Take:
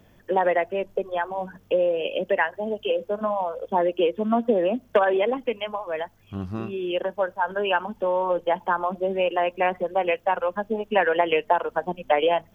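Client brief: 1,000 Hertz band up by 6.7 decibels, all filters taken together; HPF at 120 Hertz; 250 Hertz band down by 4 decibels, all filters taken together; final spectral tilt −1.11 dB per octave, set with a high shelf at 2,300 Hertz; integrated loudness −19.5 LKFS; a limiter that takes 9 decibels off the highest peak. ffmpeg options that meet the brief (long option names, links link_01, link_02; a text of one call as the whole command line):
ffmpeg -i in.wav -af "highpass=120,equalizer=frequency=250:width_type=o:gain=-6.5,equalizer=frequency=1000:width_type=o:gain=8.5,highshelf=frequency=2300:gain=4.5,volume=3.5dB,alimiter=limit=-6.5dB:level=0:latency=1" out.wav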